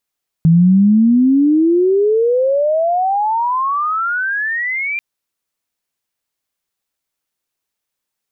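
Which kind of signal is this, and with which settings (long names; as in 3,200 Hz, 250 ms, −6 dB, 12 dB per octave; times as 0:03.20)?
glide logarithmic 160 Hz → 2,400 Hz −6 dBFS → −17.5 dBFS 4.54 s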